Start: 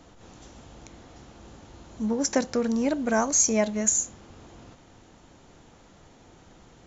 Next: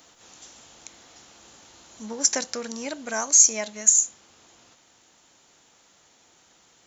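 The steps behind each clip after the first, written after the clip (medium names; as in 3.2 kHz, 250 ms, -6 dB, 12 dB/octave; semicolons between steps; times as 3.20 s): tilt EQ +4 dB/octave; in parallel at 0 dB: gain riding within 4 dB 2 s; on the sum: trim -10 dB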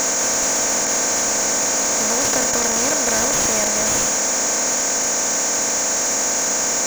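spectral levelling over time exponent 0.2; slew-rate limiter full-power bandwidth 590 Hz; trim +2 dB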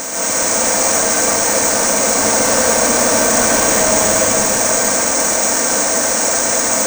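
plate-style reverb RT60 4.3 s, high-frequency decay 0.55×, pre-delay 115 ms, DRR -9.5 dB; careless resampling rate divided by 3×, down filtered, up hold; trim -3.5 dB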